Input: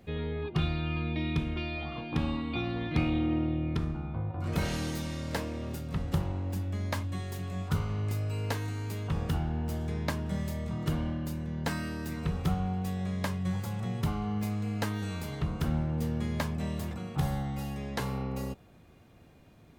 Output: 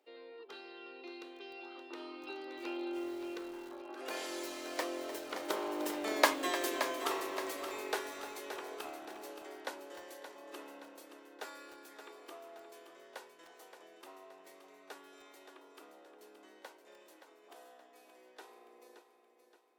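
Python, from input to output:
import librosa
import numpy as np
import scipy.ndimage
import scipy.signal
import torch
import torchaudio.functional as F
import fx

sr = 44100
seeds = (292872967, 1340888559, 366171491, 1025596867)

y = fx.doppler_pass(x, sr, speed_mps=36, closest_m=16.0, pass_at_s=6.33)
y = scipy.signal.sosfilt(scipy.signal.butter(8, 310.0, 'highpass', fs=sr, output='sos'), y)
y = fx.echo_feedback(y, sr, ms=573, feedback_pct=47, wet_db=-9.5)
y = fx.echo_crushed(y, sr, ms=302, feedback_pct=35, bits=9, wet_db=-12.5)
y = y * librosa.db_to_amplitude(10.0)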